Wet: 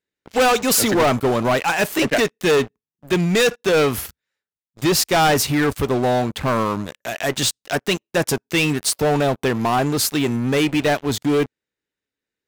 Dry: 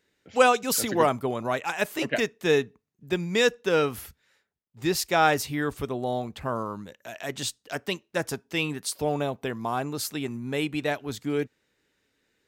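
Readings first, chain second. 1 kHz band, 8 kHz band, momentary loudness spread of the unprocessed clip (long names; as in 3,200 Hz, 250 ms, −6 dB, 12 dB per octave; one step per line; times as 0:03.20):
+6.5 dB, +10.0 dB, 11 LU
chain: leveller curve on the samples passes 5
level −5 dB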